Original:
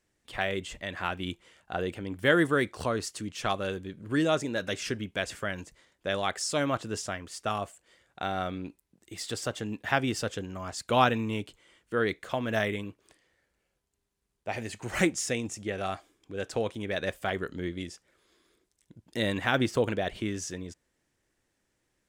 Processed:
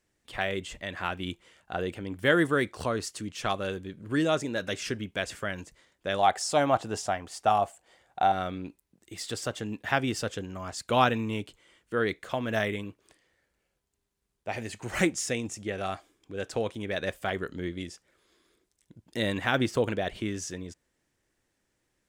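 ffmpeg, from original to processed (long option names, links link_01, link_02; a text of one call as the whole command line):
ffmpeg -i in.wav -filter_complex "[0:a]asettb=1/sr,asplit=3[link_01][link_02][link_03];[link_01]atrim=end=6.194[link_04];[link_02]atrim=start=6.19:end=8.32,asetpts=PTS-STARTPTS,afade=type=in:duration=0.004:curve=qsin,afade=type=out:start_time=2.126:duration=0.004:curve=qsin,equalizer=frequency=770:width_type=o:width=0.53:gain=13.5[link_05];[link_03]atrim=start=8.316[link_06];[link_04][link_05]acrossfade=duration=0.004:curve1=hsin:curve2=qsin[link_07];[link_07][link_06]acrossfade=duration=0.004:curve1=qsin:curve2=hsin" out.wav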